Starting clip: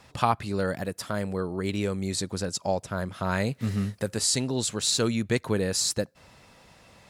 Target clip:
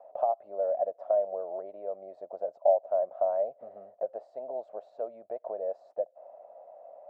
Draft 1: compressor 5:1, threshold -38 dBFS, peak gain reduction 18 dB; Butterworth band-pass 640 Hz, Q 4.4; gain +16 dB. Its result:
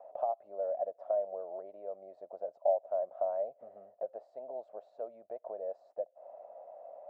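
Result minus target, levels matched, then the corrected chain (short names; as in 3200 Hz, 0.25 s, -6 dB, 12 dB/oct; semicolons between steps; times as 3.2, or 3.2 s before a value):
compressor: peak gain reduction +5.5 dB
compressor 5:1, threshold -31 dBFS, peak gain reduction 12.5 dB; Butterworth band-pass 640 Hz, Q 4.4; gain +16 dB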